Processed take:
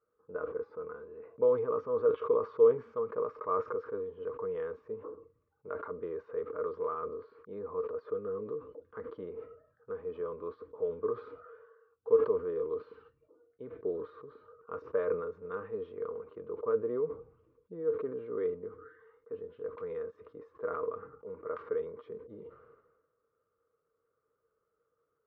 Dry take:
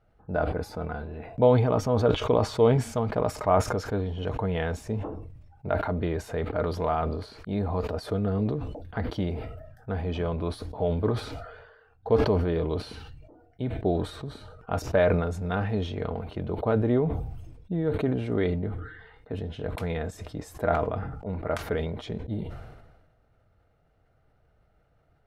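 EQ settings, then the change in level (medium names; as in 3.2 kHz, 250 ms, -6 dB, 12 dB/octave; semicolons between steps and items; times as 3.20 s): two resonant band-passes 730 Hz, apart 1.3 oct; distance through air 200 m; 0.0 dB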